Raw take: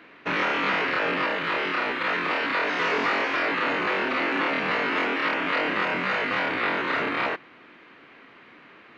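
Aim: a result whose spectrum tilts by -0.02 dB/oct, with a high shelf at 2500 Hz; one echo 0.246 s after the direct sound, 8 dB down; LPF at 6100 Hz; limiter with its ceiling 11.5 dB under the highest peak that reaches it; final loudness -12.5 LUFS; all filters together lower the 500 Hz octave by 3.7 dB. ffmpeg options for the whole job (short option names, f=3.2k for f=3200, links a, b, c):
-af "lowpass=6.1k,equalizer=f=500:t=o:g=-5,highshelf=f=2.5k:g=6.5,alimiter=limit=-24dB:level=0:latency=1,aecho=1:1:246:0.398,volume=17.5dB"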